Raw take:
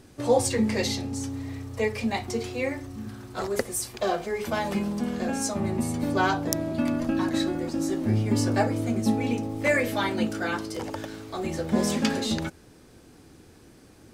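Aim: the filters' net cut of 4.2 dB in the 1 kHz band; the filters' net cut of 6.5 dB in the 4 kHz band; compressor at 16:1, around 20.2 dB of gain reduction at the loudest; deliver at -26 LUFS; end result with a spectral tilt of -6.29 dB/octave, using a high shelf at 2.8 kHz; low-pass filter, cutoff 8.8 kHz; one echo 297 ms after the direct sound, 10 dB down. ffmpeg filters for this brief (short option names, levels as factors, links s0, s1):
-af "lowpass=8800,equalizer=f=1000:t=o:g=-5,highshelf=f=2800:g=-5,equalizer=f=4000:t=o:g=-3.5,acompressor=threshold=0.0112:ratio=16,aecho=1:1:297:0.316,volume=7.08"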